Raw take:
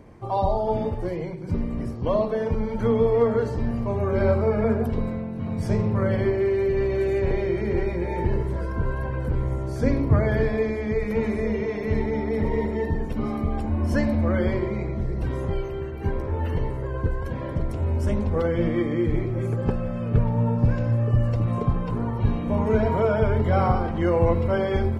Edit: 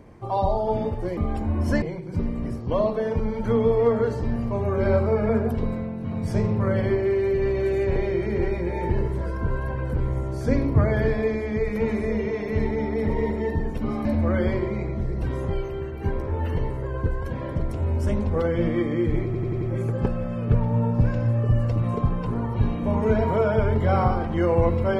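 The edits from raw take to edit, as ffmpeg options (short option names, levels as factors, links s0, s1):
-filter_complex "[0:a]asplit=8[s0][s1][s2][s3][s4][s5][s6][s7];[s0]atrim=end=1.172[s8];[s1]atrim=start=13.398:end=14.052[s9];[s2]atrim=start=1.168:end=13.402[s10];[s3]atrim=start=14.048:end=19.342[s11];[s4]atrim=start=19.248:end=19.342[s12];[s5]atrim=start=19.248:end=19.342[s13];[s6]atrim=start=19.248:end=19.342[s14];[s7]atrim=start=19.248[s15];[s8][s9]acrossfade=d=0.004:c1=hsin:c2=hsin[s16];[s16][s10]acrossfade=d=0.004:c1=hsin:c2=hsin[s17];[s17][s11]acrossfade=d=0.004:c1=hsin:c2=hsin[s18];[s18][s12]acrossfade=d=0.004:c1=hsin:c2=hsin[s19];[s19][s13]acrossfade=d=0.004:c1=hsin:c2=hsin[s20];[s20][s14]acrossfade=d=0.004:c1=hsin:c2=hsin[s21];[s21][s15]acrossfade=d=0.004:c1=hsin:c2=hsin"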